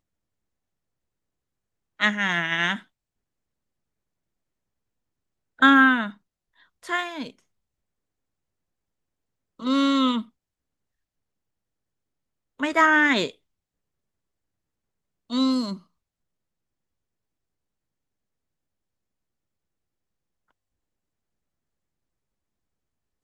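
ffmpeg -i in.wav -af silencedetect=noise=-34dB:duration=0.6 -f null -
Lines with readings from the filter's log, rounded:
silence_start: 0.00
silence_end: 1.99 | silence_duration: 1.99
silence_start: 2.78
silence_end: 5.62 | silence_duration: 2.83
silence_start: 6.10
silence_end: 6.85 | silence_duration: 0.75
silence_start: 7.30
silence_end: 9.60 | silence_duration: 2.30
silence_start: 10.22
silence_end: 12.60 | silence_duration: 2.38
silence_start: 13.30
silence_end: 15.31 | silence_duration: 2.01
silence_start: 15.75
silence_end: 23.24 | silence_duration: 7.49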